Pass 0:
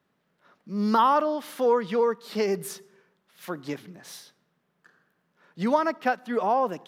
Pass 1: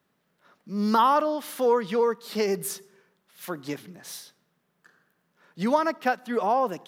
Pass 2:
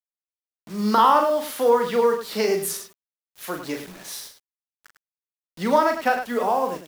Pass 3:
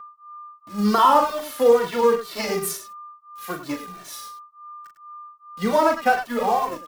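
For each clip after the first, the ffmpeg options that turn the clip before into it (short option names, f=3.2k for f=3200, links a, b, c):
-af "highshelf=f=6.1k:g=7.5"
-filter_complex "[0:a]acrossover=split=320[a][b];[b]dynaudnorm=f=160:g=7:m=5dB[c];[a][c]amix=inputs=2:normalize=0,acrusher=bits=6:mix=0:aa=0.000001,aecho=1:1:37.9|102:0.501|0.355,volume=-1.5dB"
-filter_complex "[0:a]asplit=2[a][b];[b]acrusher=bits=3:mix=0:aa=0.5,volume=-6.5dB[c];[a][c]amix=inputs=2:normalize=0,aeval=exprs='val(0)+0.0158*sin(2*PI*1200*n/s)':c=same,asplit=2[d][e];[e]adelay=2.1,afreqshift=-2.3[f];[d][f]amix=inputs=2:normalize=1"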